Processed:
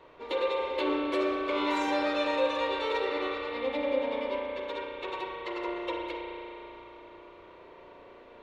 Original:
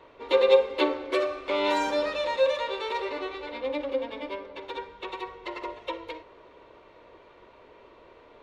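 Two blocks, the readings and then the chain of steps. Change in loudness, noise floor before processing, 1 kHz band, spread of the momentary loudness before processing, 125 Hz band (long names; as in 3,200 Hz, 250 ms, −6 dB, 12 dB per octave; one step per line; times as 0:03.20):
−3.0 dB, −54 dBFS, −1.0 dB, 17 LU, can't be measured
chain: brickwall limiter −20 dBFS, peak gain reduction 11.5 dB
spring reverb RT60 3.2 s, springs 34 ms, chirp 30 ms, DRR −1.5 dB
level −2.5 dB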